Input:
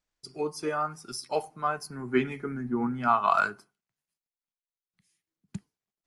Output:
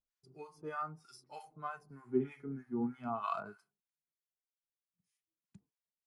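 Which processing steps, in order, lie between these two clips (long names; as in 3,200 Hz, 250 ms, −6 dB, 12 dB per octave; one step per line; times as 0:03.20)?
two-band tremolo in antiphase 3.2 Hz, depth 100%, crossover 850 Hz
harmonic and percussive parts rebalanced percussive −13 dB
level −4 dB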